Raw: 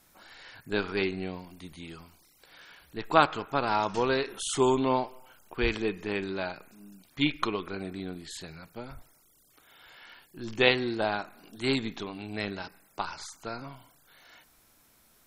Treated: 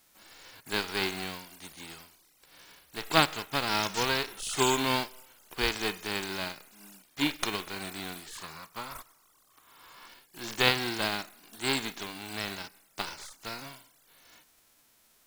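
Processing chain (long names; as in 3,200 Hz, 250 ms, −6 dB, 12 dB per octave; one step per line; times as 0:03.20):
spectral envelope flattened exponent 0.3
0:08.35–0:10.08: parametric band 1,100 Hz +13.5 dB 0.5 octaves
level −2 dB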